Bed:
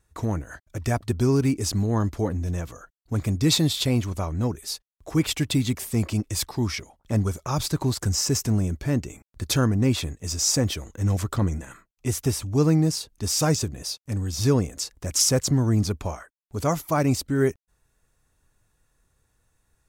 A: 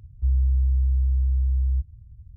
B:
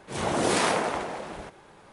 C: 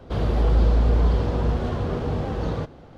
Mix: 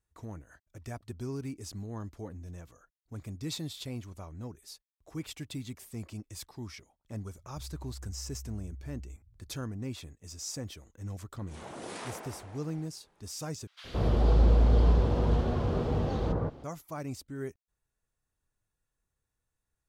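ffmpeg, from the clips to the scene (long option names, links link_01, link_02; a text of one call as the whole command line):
ffmpeg -i bed.wav -i cue0.wav -i cue1.wav -i cue2.wav -filter_complex "[0:a]volume=-16.5dB[link_01];[1:a]alimiter=level_in=1.5dB:limit=-24dB:level=0:latency=1:release=20,volume=-1.5dB[link_02];[3:a]acrossover=split=1700[link_03][link_04];[link_03]adelay=170[link_05];[link_05][link_04]amix=inputs=2:normalize=0[link_06];[link_01]asplit=2[link_07][link_08];[link_07]atrim=end=13.674[link_09];[link_06]atrim=end=2.97,asetpts=PTS-STARTPTS,volume=-3.5dB[link_10];[link_08]atrim=start=16.636[link_11];[link_02]atrim=end=2.36,asetpts=PTS-STARTPTS,volume=-15.5dB,afade=type=in:duration=0.004:curve=hsin,afade=type=out:start_time=2.356:duration=0.004:curve=hsin,adelay=7340[link_12];[2:a]atrim=end=1.92,asetpts=PTS-STARTPTS,volume=-17.5dB,afade=type=in:duration=0.004:curve=hsin,afade=type=out:start_time=1.916:duration=0.004:curve=hsin,adelay=11390[link_13];[link_09][link_10]acrossfade=duration=0.004:curve1=hsin:curve2=hsin[link_14];[link_14][link_11]acrossfade=duration=0.004:curve1=hsin:curve2=hsin[link_15];[link_15][link_12][link_13]amix=inputs=3:normalize=0" out.wav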